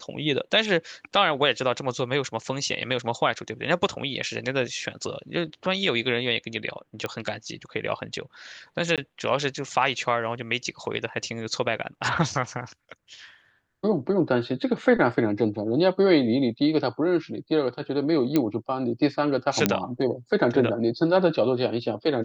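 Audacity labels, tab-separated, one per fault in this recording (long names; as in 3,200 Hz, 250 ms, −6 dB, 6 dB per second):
7.060000	7.060000	click −16 dBFS
8.960000	8.980000	drop-out 17 ms
18.360000	18.360000	click −9 dBFS
19.660000	19.660000	click −4 dBFS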